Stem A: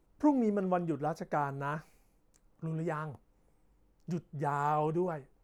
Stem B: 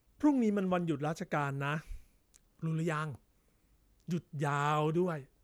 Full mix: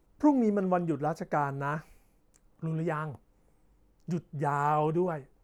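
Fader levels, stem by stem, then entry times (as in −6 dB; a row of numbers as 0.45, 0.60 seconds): +2.5, −14.5 decibels; 0.00, 0.00 seconds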